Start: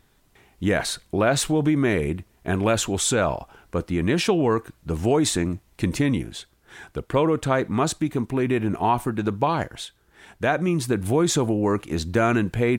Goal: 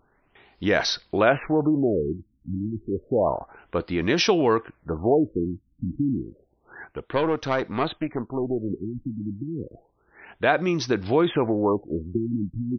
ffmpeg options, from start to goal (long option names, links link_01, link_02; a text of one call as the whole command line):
ffmpeg -i in.wav -filter_complex "[0:a]asettb=1/sr,asplit=3[link_01][link_02][link_03];[link_01]atrim=end=6.854[link_04];[link_02]atrim=start=6.85:end=8.7,asetpts=PTS-STARTPTS,afade=type=in:duration=0.004:curve=qsin,afade=type=out:start_time=1.846:duration=0.004:curve=qsin,aeval=exprs='(tanh(3.55*val(0)+0.65)-tanh(0.65))/3.55':channel_layout=same[link_05];[link_03]atrim=start=8.696[link_06];[link_04][link_05]acrossfade=duration=0.004:curve1=hsin:curve2=qsin[link_07];[link_07][link_06]acrossfade=duration=0.004:curve1=qsin:curve2=hsin,bass=frequency=250:gain=-8,treble=frequency=4000:gain=5,afftfilt=real='re*lt(b*sr/1024,300*pow(6200/300,0.5+0.5*sin(2*PI*0.3*pts/sr)))':imag='im*lt(b*sr/1024,300*pow(6200/300,0.5+0.5*sin(2*PI*0.3*pts/sr)))':win_size=1024:overlap=0.75,volume=2dB" out.wav